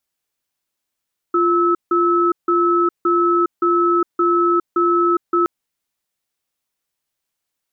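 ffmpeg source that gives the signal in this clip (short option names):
-f lavfi -i "aevalsrc='0.168*(sin(2*PI*347*t)+sin(2*PI*1300*t))*clip(min(mod(t,0.57),0.41-mod(t,0.57))/0.005,0,1)':d=4.12:s=44100"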